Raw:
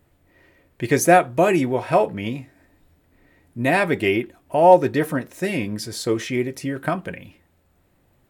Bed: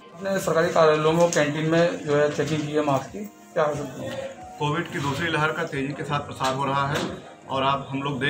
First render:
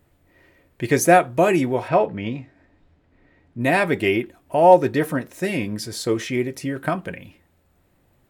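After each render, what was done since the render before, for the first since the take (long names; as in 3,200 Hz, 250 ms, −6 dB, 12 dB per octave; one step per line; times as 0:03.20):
0:01.88–0:03.61: high-frequency loss of the air 130 metres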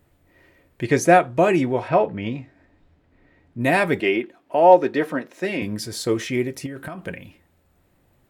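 0:00.83–0:02.22: high-frequency loss of the air 51 metres
0:04.00–0:05.62: three-way crossover with the lows and the highs turned down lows −22 dB, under 190 Hz, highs −14 dB, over 5,500 Hz
0:06.66–0:07.06: downward compressor 12 to 1, threshold −29 dBFS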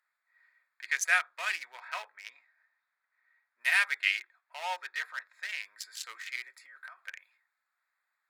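adaptive Wiener filter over 15 samples
high-pass filter 1,500 Hz 24 dB per octave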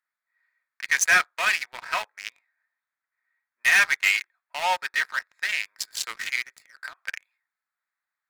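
leveller curve on the samples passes 3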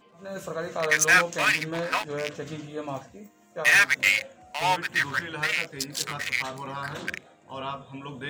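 mix in bed −11.5 dB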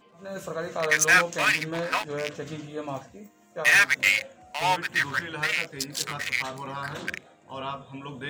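no processing that can be heard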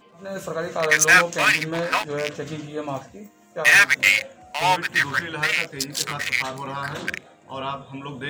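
level +4.5 dB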